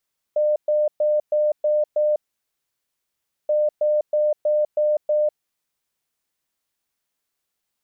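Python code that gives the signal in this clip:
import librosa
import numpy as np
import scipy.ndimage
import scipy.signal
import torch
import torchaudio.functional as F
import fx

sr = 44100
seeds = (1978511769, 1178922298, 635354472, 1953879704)

y = fx.beep_pattern(sr, wave='sine', hz=602.0, on_s=0.2, off_s=0.12, beeps=6, pause_s=1.33, groups=2, level_db=-16.0)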